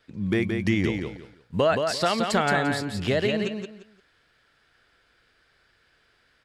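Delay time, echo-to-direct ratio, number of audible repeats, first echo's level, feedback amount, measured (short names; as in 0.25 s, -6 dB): 0.173 s, -4.5 dB, 3, -5.0 dB, 24%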